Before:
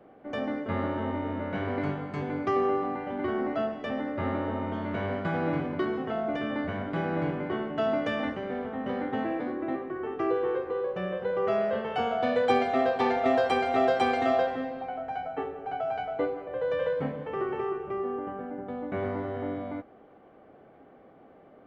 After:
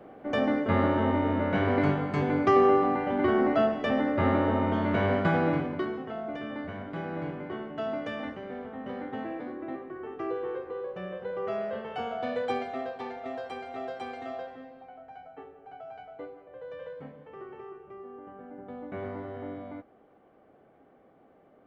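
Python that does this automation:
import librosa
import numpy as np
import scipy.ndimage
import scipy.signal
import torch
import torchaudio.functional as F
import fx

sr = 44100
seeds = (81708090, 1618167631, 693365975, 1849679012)

y = fx.gain(x, sr, db=fx.line((5.26, 5.5), (6.06, -5.5), (12.4, -5.5), (13.13, -13.0), (18.09, -13.0), (18.71, -5.5)))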